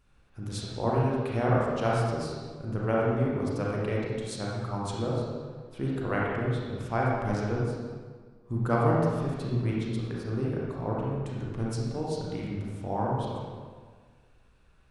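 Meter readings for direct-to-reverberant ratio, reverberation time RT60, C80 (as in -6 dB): -5.0 dB, 1.6 s, 0.5 dB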